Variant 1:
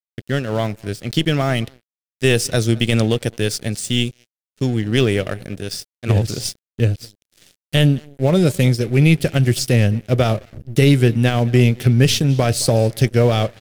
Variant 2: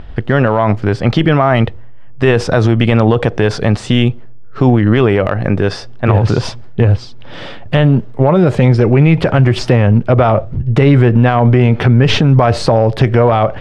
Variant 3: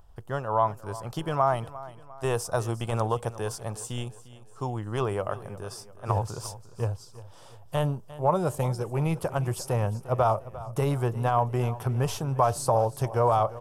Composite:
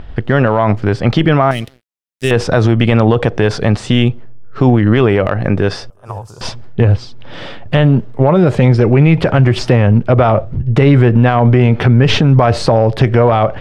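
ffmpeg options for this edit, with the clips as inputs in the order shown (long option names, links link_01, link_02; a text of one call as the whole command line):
ffmpeg -i take0.wav -i take1.wav -i take2.wav -filter_complex "[1:a]asplit=3[link_01][link_02][link_03];[link_01]atrim=end=1.512[link_04];[0:a]atrim=start=1.508:end=2.312[link_05];[link_02]atrim=start=2.308:end=5.902[link_06];[2:a]atrim=start=5.898:end=6.412[link_07];[link_03]atrim=start=6.408[link_08];[link_04][link_05]acrossfade=duration=0.004:curve1=hsin:curve2=hsin[link_09];[link_09][link_06]acrossfade=duration=0.004:curve1=hsin:curve2=hsin[link_10];[link_10][link_07]acrossfade=duration=0.004:curve1=hsin:curve2=hsin[link_11];[link_11][link_08]acrossfade=duration=0.004:curve1=hsin:curve2=hsin" out.wav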